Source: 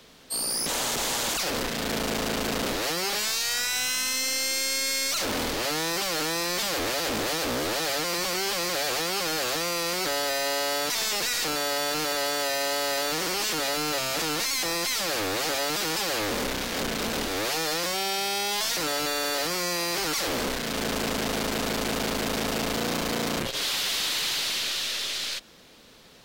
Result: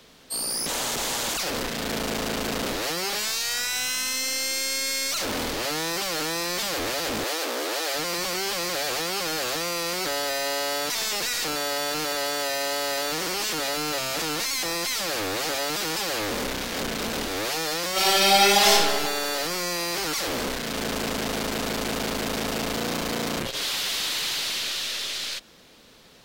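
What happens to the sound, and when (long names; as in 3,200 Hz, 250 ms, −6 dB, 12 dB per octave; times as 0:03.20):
0:07.24–0:07.94: high-pass filter 310 Hz 24 dB per octave
0:17.92–0:18.71: thrown reverb, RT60 1.6 s, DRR −10.5 dB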